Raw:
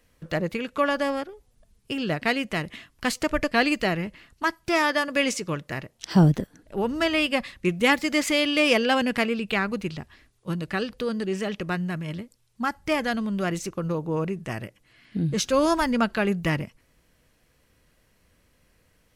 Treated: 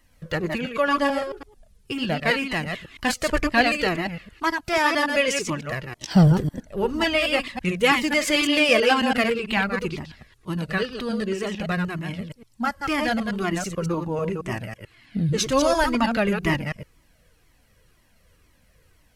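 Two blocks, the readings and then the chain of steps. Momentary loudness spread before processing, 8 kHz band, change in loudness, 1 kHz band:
13 LU, +3.0 dB, +2.0 dB, +3.0 dB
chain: reverse delay 0.11 s, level -5 dB; cascading flanger falling 2 Hz; gain +6 dB

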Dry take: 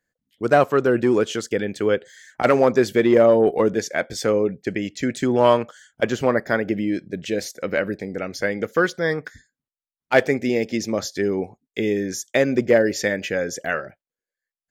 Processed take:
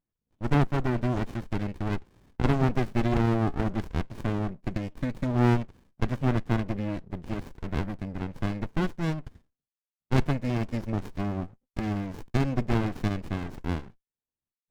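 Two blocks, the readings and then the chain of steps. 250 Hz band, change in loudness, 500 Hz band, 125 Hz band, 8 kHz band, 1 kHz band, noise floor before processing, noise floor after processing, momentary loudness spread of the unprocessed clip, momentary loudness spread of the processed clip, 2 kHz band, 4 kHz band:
-5.5 dB, -8.5 dB, -16.0 dB, +5.0 dB, under -15 dB, -8.5 dB, under -85 dBFS, under -85 dBFS, 10 LU, 11 LU, -13.0 dB, -11.0 dB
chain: running maximum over 65 samples; gain -6 dB

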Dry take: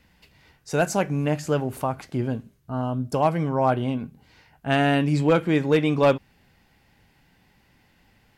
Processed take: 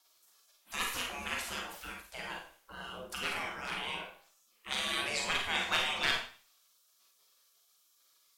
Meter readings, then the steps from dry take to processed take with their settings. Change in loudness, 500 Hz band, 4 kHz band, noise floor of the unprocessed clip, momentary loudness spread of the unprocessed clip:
-11.0 dB, -22.5 dB, +3.0 dB, -62 dBFS, 10 LU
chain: vibrato 1.3 Hz 10 cents; spectral gate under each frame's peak -25 dB weak; Schroeder reverb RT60 0.42 s, combs from 33 ms, DRR 0.5 dB; gain +3.5 dB

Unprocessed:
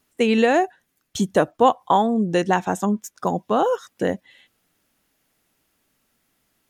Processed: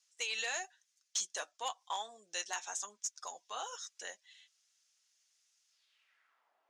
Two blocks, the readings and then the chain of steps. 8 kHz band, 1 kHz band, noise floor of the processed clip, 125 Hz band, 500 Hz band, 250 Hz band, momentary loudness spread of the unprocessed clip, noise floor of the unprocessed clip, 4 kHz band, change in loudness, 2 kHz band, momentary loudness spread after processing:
0.0 dB, -22.0 dB, -80 dBFS, under -40 dB, -29.5 dB, under -40 dB, 9 LU, -71 dBFS, -7.0 dB, -19.0 dB, -13.0 dB, 12 LU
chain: band-pass sweep 6100 Hz -> 760 Hz, 5.68–6.53; in parallel at -9.5 dB: soft clip -38.5 dBFS, distortion -8 dB; on the sum: flange 1 Hz, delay 4.5 ms, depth 4.1 ms, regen -44%; wavefolder -32.5 dBFS; BPF 600–7900 Hz; gain +6.5 dB

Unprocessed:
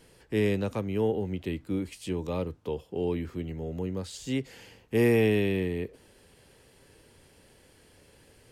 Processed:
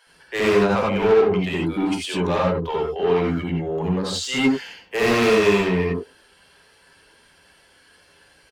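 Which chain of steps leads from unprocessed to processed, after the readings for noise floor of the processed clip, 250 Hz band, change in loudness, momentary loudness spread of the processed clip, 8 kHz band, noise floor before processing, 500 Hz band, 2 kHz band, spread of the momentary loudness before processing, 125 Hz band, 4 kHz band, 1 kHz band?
-56 dBFS, +7.5 dB, +9.0 dB, 9 LU, +12.5 dB, -59 dBFS, +10.0 dB, +12.5 dB, 12 LU, +5.0 dB, +14.5 dB, +17.0 dB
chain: per-bin expansion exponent 1.5; high shelf 4600 Hz -12 dB; bands offset in time highs, lows 70 ms, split 560 Hz; overdrive pedal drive 30 dB, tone 5700 Hz, clips at -14 dBFS; non-linear reverb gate 0.11 s rising, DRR -1.5 dB

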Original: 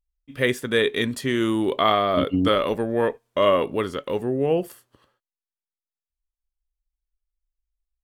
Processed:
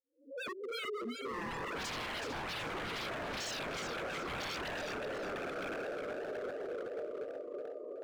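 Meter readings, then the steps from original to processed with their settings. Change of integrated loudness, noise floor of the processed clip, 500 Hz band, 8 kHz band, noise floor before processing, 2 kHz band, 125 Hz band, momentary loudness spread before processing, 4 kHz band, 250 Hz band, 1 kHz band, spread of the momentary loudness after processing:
-17.0 dB, -46 dBFS, -16.0 dB, n/a, under -85 dBFS, -9.5 dB, -18.0 dB, 6 LU, -11.5 dB, -19.5 dB, -14.5 dB, 5 LU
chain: spectral swells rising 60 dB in 0.34 s; Chebyshev band-pass 390–7400 Hz, order 2; loudest bins only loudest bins 2; diffused feedback echo 1.12 s, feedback 52%, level -5 dB; wavefolder -32.5 dBFS; warbling echo 0.367 s, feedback 39%, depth 168 cents, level -6 dB; gain -3.5 dB

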